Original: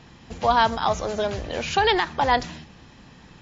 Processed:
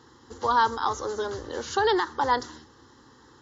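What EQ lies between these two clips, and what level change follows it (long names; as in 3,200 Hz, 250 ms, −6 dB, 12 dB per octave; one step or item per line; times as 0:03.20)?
high-pass filter 110 Hz 12 dB per octave
phaser with its sweep stopped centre 660 Hz, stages 6
0.0 dB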